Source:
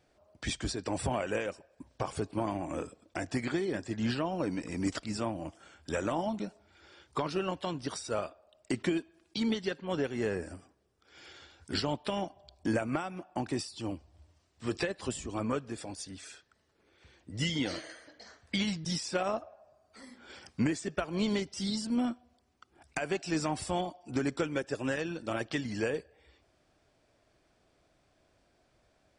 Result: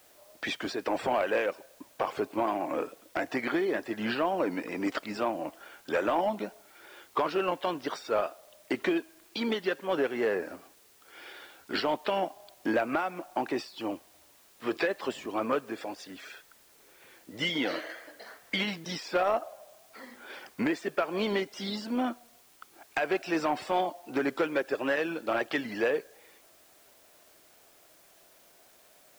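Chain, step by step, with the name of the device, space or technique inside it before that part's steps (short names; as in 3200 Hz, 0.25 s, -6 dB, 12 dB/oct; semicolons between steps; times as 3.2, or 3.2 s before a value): tape answering machine (BPF 380–2800 Hz; soft clip -25.5 dBFS, distortion -19 dB; wow and flutter; white noise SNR 28 dB); gain +8 dB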